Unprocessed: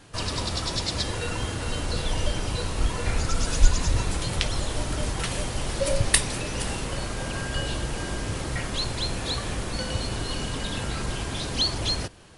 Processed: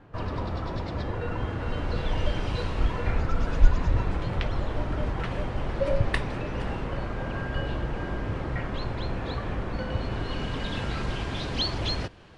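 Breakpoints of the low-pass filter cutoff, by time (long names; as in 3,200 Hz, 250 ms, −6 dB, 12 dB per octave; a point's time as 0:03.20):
0:01.18 1,400 Hz
0:02.59 3,200 Hz
0:03.26 1,800 Hz
0:09.89 1,800 Hz
0:10.77 3,500 Hz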